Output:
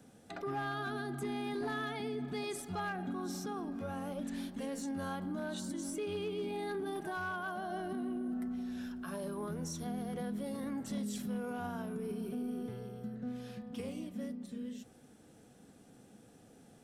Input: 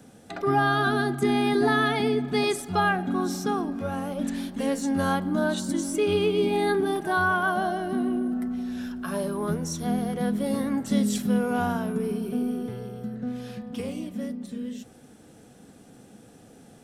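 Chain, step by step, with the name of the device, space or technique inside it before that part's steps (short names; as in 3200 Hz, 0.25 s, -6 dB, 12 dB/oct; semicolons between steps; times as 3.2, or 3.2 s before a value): clipper into limiter (hard clip -16.5 dBFS, distortion -25 dB; limiter -23 dBFS, peak gain reduction 6.5 dB); gain -8.5 dB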